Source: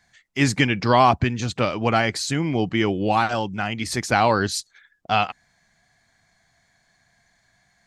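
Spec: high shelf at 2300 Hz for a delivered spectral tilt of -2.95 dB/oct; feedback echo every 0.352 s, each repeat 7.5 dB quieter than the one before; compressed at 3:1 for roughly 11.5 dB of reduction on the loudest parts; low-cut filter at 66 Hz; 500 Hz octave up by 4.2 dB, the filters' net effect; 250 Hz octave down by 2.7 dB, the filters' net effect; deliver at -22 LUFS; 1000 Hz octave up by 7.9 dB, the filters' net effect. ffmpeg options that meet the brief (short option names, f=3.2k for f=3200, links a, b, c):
-af "highpass=66,equalizer=f=250:t=o:g=-5,equalizer=f=500:t=o:g=3,equalizer=f=1k:t=o:g=8,highshelf=f=2.3k:g=8.5,acompressor=threshold=-19dB:ratio=3,aecho=1:1:352|704|1056|1408|1760:0.422|0.177|0.0744|0.0312|0.0131"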